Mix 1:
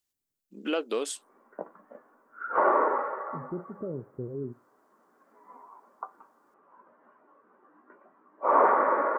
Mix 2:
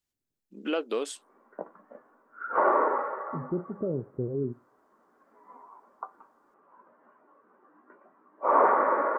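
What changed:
second voice +5.0 dB; master: add treble shelf 5.5 kHz -7 dB

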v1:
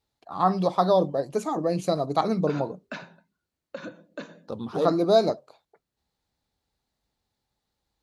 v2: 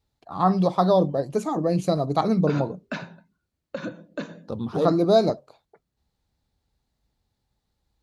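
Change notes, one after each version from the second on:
background +3.5 dB; master: add bass shelf 190 Hz +10.5 dB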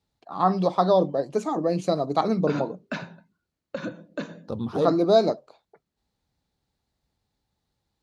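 first voice: add band-pass 210–7700 Hz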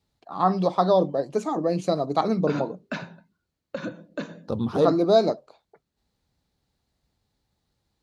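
second voice +3.5 dB

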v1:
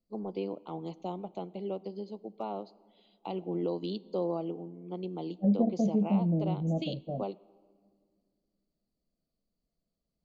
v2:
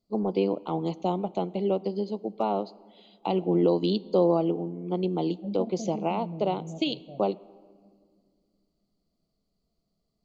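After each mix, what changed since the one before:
first voice +10.0 dB; second voice -9.0 dB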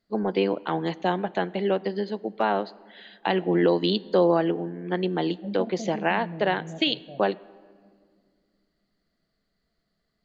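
first voice: remove Butterworth band-stop 1.7 kHz, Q 1.7; master: add FFT filter 170 Hz 0 dB, 760 Hz +3 dB, 1.6 kHz +8 dB, 3.7 kHz +8 dB, 5.7 kHz 0 dB

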